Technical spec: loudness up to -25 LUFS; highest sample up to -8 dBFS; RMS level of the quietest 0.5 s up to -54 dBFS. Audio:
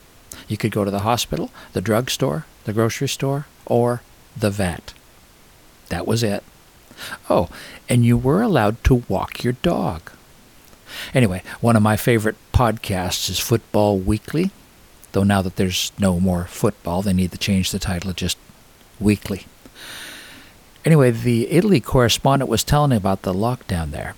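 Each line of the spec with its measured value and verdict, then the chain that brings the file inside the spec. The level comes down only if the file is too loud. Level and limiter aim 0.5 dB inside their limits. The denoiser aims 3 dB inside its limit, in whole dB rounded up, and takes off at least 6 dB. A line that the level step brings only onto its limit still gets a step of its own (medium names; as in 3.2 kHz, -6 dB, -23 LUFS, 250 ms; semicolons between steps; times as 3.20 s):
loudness -20.0 LUFS: fail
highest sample -4.0 dBFS: fail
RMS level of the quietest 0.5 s -49 dBFS: fail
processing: trim -5.5 dB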